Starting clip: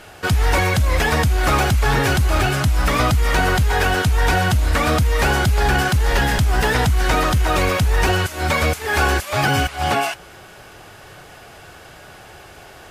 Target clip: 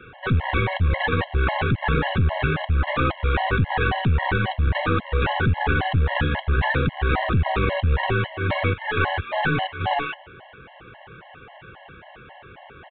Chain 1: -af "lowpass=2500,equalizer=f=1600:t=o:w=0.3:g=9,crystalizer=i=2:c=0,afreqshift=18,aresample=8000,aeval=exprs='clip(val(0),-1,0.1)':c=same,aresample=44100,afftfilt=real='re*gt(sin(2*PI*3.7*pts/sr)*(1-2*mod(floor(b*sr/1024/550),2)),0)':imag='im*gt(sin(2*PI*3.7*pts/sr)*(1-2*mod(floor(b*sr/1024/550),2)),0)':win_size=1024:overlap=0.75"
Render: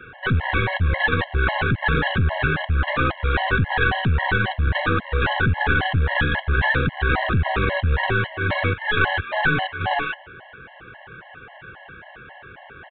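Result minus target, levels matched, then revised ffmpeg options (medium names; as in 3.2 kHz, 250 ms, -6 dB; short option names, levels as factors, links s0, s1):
2 kHz band +3.5 dB
-af "lowpass=2500,crystalizer=i=2:c=0,afreqshift=18,aresample=8000,aeval=exprs='clip(val(0),-1,0.1)':c=same,aresample=44100,afftfilt=real='re*gt(sin(2*PI*3.7*pts/sr)*(1-2*mod(floor(b*sr/1024/550),2)),0)':imag='im*gt(sin(2*PI*3.7*pts/sr)*(1-2*mod(floor(b*sr/1024/550),2)),0)':win_size=1024:overlap=0.75"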